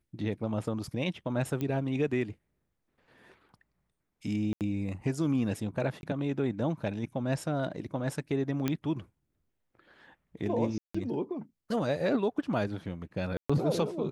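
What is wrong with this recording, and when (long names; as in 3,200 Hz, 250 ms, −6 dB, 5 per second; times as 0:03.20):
0:01.61: click −21 dBFS
0:04.53–0:04.61: drop-out 78 ms
0:06.01–0:06.03: drop-out 21 ms
0:08.68: click −15 dBFS
0:10.78–0:10.95: drop-out 165 ms
0:13.37–0:13.49: drop-out 125 ms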